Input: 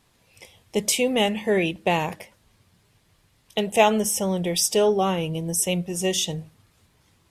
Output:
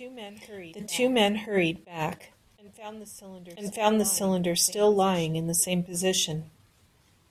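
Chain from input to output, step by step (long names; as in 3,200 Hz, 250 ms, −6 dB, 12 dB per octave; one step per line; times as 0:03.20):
backwards echo 988 ms −19 dB
level that may rise only so fast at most 160 dB per second
level −1 dB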